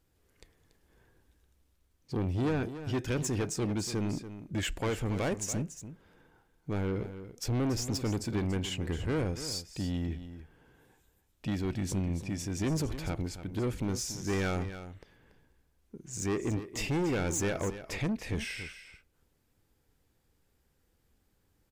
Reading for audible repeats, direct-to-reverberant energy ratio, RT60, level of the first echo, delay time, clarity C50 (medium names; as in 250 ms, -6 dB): 1, no reverb, no reverb, -12.0 dB, 285 ms, no reverb